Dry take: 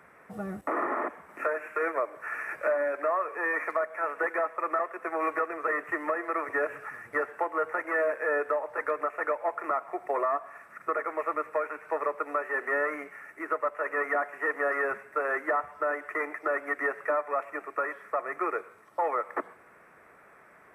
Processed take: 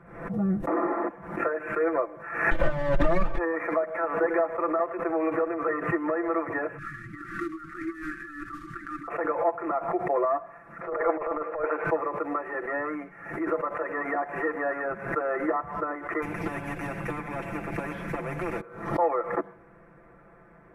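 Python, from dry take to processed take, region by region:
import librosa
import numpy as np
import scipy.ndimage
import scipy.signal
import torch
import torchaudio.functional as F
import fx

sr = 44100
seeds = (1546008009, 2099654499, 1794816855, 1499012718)

y = fx.chain(x, sr, fx.lower_of_two(delay_ms=3.3),
    fx.high_shelf(hz=7000.0, db=7.0),
    fx.band_squash(depth_pct=70), at=(2.51, 3.38))
y = fx.chain(y, sr, fx.cvsd(bps=64000),
    fx.brickwall_bandstop(low_hz=360.0, high_hz=1100.0),
    fx.over_compress(threshold_db=-38.0, ratio=-1.0), at=(6.78, 9.08))
y = fx.chain(y, sr, fx.bandpass_edges(low_hz=410.0, high_hz=3800.0),
    fx.peak_eq(hz=580.0, db=9.0, octaves=1.8),
    fx.over_compress(threshold_db=-28.0, ratio=-0.5), at=(10.81, 11.84))
y = fx.chain(y, sr, fx.band_shelf(hz=950.0, db=-8.5, octaves=1.1),
    fx.spectral_comp(ratio=4.0), at=(16.22, 18.61))
y = fx.tilt_eq(y, sr, slope=-4.5)
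y = y + 0.8 * np.pad(y, (int(5.9 * sr / 1000.0), 0))[:len(y)]
y = fx.pre_swell(y, sr, db_per_s=82.0)
y = F.gain(torch.from_numpy(y), -2.5).numpy()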